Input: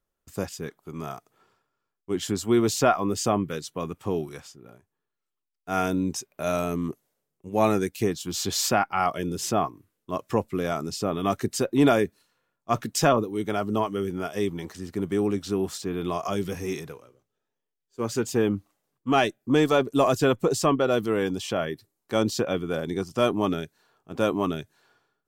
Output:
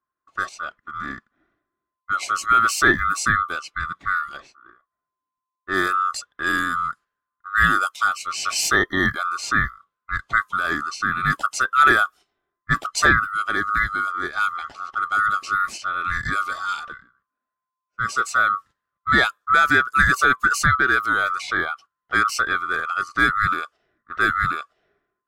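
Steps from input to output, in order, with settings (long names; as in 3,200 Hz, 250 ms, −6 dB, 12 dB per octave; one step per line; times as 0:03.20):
neighbouring bands swapped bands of 1,000 Hz
noise gate −46 dBFS, range −7 dB
low-pass that shuts in the quiet parts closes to 2,000 Hz, open at −21.5 dBFS
level +4 dB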